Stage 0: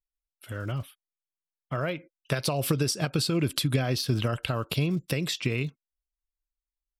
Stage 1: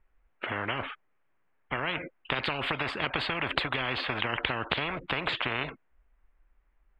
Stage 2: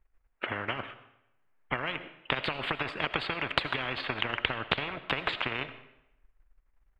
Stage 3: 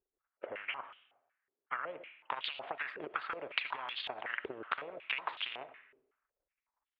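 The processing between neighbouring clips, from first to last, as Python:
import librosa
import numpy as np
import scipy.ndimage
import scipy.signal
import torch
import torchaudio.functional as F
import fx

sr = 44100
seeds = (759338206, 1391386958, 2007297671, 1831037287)

y1 = scipy.signal.sosfilt(scipy.signal.cheby2(4, 50, 5300.0, 'lowpass', fs=sr, output='sos'), x)
y1 = fx.spectral_comp(y1, sr, ratio=10.0)
y1 = y1 * librosa.db_to_amplitude(6.0)
y2 = fx.transient(y1, sr, attack_db=5, sustain_db=-9)
y2 = fx.rev_freeverb(y2, sr, rt60_s=0.85, hf_ratio=0.85, predelay_ms=45, drr_db=12.5)
y2 = y2 * librosa.db_to_amplitude(-3.0)
y3 = fx.filter_held_bandpass(y2, sr, hz=5.4, low_hz=390.0, high_hz=3300.0)
y3 = y3 * librosa.db_to_amplitude(1.5)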